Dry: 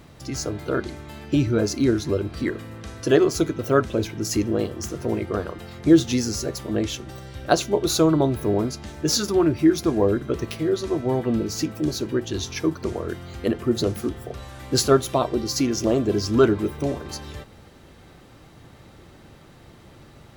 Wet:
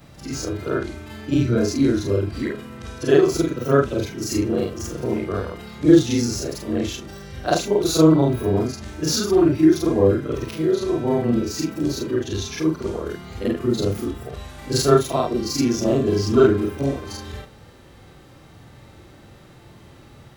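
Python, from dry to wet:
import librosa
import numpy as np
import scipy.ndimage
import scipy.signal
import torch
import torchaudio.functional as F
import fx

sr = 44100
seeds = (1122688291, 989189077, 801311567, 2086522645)

y = fx.frame_reverse(x, sr, frame_ms=101.0)
y = fx.hpss(y, sr, part='harmonic', gain_db=7)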